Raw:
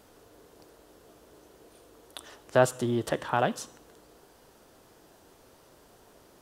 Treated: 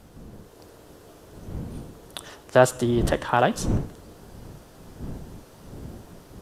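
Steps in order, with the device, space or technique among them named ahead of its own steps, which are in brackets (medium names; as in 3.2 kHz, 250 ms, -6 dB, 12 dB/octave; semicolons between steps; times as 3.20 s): smartphone video outdoors (wind noise 200 Hz -41 dBFS; level rider gain up to 4.5 dB; trim +2 dB; AAC 96 kbps 32 kHz)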